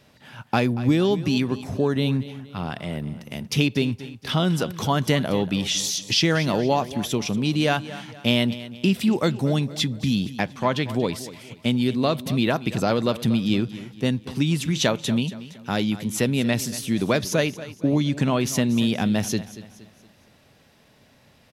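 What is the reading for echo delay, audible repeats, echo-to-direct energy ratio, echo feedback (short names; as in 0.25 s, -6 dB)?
0.234 s, 3, -14.5 dB, 41%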